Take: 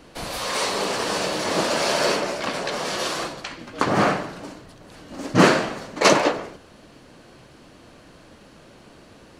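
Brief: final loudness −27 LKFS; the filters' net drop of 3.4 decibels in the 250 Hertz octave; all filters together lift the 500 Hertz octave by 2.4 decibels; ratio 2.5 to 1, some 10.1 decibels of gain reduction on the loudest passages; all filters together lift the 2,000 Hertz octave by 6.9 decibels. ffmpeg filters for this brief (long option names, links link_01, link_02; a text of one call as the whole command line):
ffmpeg -i in.wav -af "equalizer=frequency=250:width_type=o:gain=-6.5,equalizer=frequency=500:width_type=o:gain=4,equalizer=frequency=2000:width_type=o:gain=8.5,acompressor=threshold=-23dB:ratio=2.5,volume=-2dB" out.wav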